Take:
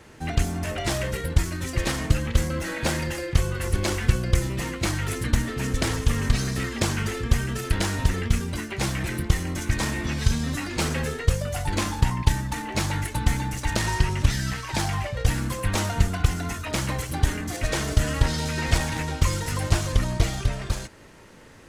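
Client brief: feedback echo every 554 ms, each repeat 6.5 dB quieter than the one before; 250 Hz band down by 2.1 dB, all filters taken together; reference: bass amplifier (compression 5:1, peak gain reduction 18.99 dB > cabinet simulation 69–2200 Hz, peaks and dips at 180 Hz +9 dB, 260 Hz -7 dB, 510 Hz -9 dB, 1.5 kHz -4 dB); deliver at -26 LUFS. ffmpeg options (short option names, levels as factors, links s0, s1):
-af "equalizer=f=250:t=o:g=-7,aecho=1:1:554|1108|1662|2216|2770|3324:0.473|0.222|0.105|0.0491|0.0231|0.0109,acompressor=threshold=0.0224:ratio=5,highpass=f=69:w=0.5412,highpass=f=69:w=1.3066,equalizer=f=180:t=q:w=4:g=9,equalizer=f=260:t=q:w=4:g=-7,equalizer=f=510:t=q:w=4:g=-9,equalizer=f=1500:t=q:w=4:g=-4,lowpass=f=2200:w=0.5412,lowpass=f=2200:w=1.3066,volume=4.47"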